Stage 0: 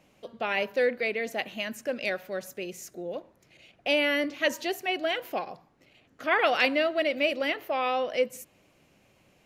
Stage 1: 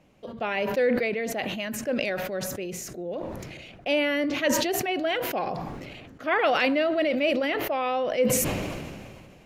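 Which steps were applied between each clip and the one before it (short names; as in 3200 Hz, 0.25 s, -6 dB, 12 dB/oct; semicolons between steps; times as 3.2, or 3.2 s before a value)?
tilt -1.5 dB/oct; sustainer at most 28 dB/s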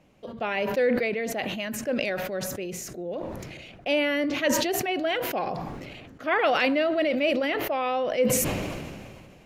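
nothing audible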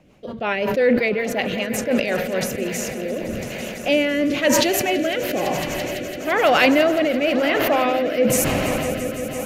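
swelling echo 0.168 s, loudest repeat 5, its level -16 dB; rotary speaker horn 5.5 Hz, later 1 Hz, at 1.96; gain +8 dB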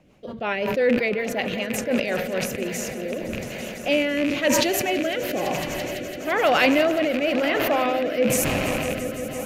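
rattling part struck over -26 dBFS, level -15 dBFS; gain -3 dB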